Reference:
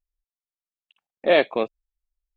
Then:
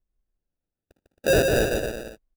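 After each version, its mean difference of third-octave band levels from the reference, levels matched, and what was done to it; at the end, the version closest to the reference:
16.0 dB: decimation without filtering 41×
soft clipping −15.5 dBFS, distortion −13 dB
low-shelf EQ 230 Hz +7 dB
bouncing-ball delay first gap 150 ms, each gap 0.8×, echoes 5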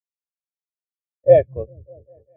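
12.0 dB: sub-octave generator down 2 octaves, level +3 dB
echo whose low-pass opens from repeat to repeat 199 ms, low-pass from 200 Hz, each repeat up 1 octave, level −6 dB
every bin expanded away from the loudest bin 2.5 to 1
level +3.5 dB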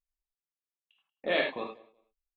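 4.5 dB: repeating echo 185 ms, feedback 20%, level −14.5 dB
dynamic equaliser 500 Hz, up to −5 dB, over −27 dBFS, Q 0.86
reverb reduction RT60 1.3 s
reverb whose tail is shaped and stops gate 120 ms flat, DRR −0.5 dB
level −9 dB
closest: third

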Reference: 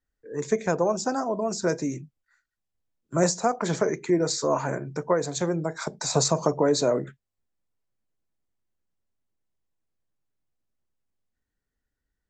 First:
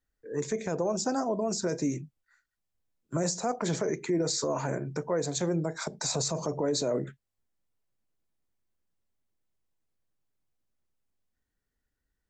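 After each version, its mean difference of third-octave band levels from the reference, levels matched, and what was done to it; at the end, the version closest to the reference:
2.5 dB: dynamic equaliser 1,200 Hz, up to −5 dB, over −38 dBFS, Q 1
brickwall limiter −20 dBFS, peak gain reduction 10.5 dB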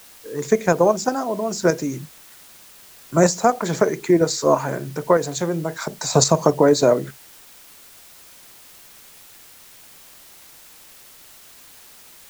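5.5 dB: in parallel at +1.5 dB: output level in coarse steps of 23 dB
on the sum: bit-depth reduction 8 bits, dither triangular
level +2 dB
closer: first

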